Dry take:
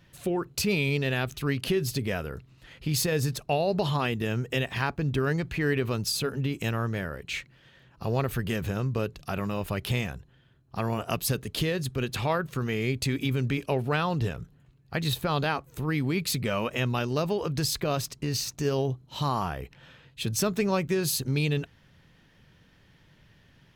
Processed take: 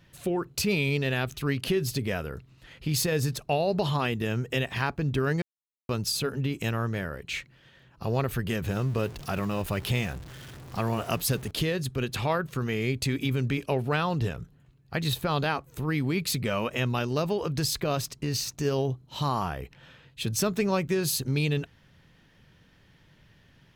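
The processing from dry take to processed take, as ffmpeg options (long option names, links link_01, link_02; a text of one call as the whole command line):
ffmpeg -i in.wav -filter_complex "[0:a]asettb=1/sr,asplit=3[link_01][link_02][link_03];[link_01]atrim=end=8.684[link_04];[link_02]atrim=start=8.68:end=11.51,asetpts=PTS-STARTPTS,afade=type=in:duration=0.004:curve=qsin,afade=type=out:start_time=2.826:duration=0.004:curve=qsin,aeval=exprs='val(0)+0.5*0.0112*sgn(val(0))':channel_layout=same[link_05];[link_03]atrim=start=11.506[link_06];[link_04][link_05]acrossfade=duration=0.004:curve1=hsin:curve2=qsin[link_07];[link_07][link_06]acrossfade=duration=0.004:curve1=qsin:curve2=hsin,asplit=3[link_08][link_09][link_10];[link_08]atrim=end=5.42,asetpts=PTS-STARTPTS,afade=type=out:start_time=5.416:duration=0.004:curve=hsin[link_11];[link_09]atrim=start=5.42:end=5.89,asetpts=PTS-STARTPTS,volume=0[link_12];[link_10]atrim=start=5.89,asetpts=PTS-STARTPTS,afade=type=in:duration=0.004:curve=hsin[link_13];[link_11][link_12][link_13]concat=n=3:v=0:a=1" out.wav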